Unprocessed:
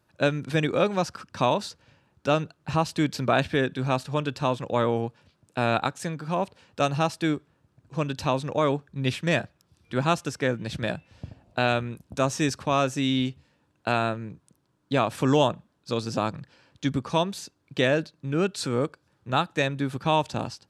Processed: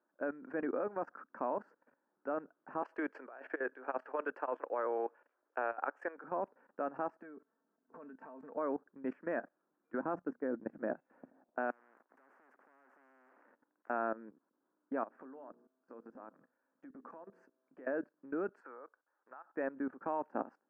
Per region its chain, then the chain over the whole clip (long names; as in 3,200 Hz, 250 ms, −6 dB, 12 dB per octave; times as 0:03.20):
0:02.82–0:06.24: high-pass filter 380 Hz 24 dB per octave + parametric band 3,100 Hz +9 dB 1.3 octaves + compressor whose output falls as the input rises −26 dBFS, ratio −0.5
0:07.22–0:08.57: comb filter 4.5 ms, depth 63% + downward compressor 2.5 to 1, threshold −35 dBFS
0:10.01–0:10.95: mains-hum notches 60/120/180/240 Hz + noise gate −35 dBFS, range −12 dB + spectral tilt −3 dB per octave
0:11.70–0:13.90: downward compressor 12 to 1, threshold −35 dBFS + leveller curve on the samples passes 3 + every bin compressed towards the loudest bin 10 to 1
0:15.03–0:17.87: mains-hum notches 60/120/180/240/300/360/420/480 Hz + downward compressor 5 to 1, threshold −33 dBFS + tuned comb filter 130 Hz, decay 1.1 s, mix 40%
0:18.60–0:19.55: high-pass filter 790 Hz + high-shelf EQ 4,400 Hz −8 dB + downward compressor 16 to 1, threshold −36 dBFS
whole clip: elliptic band-pass filter 250–1,600 Hz, stop band 40 dB; output level in coarse steps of 16 dB; level −3 dB